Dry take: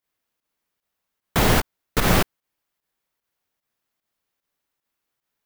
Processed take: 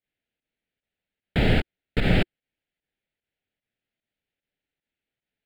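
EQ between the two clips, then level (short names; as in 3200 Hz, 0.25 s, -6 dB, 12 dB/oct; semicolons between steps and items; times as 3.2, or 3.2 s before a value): air absorption 130 m; bell 350 Hz -3 dB 0.23 oct; fixed phaser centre 2600 Hz, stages 4; 0.0 dB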